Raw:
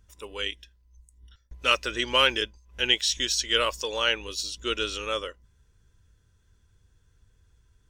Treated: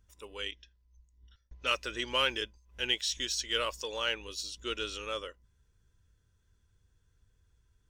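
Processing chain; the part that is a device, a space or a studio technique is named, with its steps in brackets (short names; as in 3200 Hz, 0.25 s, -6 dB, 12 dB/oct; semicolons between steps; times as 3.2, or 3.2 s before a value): 0.51–1.67 steep low-pass 6500 Hz 48 dB/oct; parallel distortion (in parallel at -13.5 dB: hard clip -24 dBFS, distortion -6 dB); on the sum: gain -8.5 dB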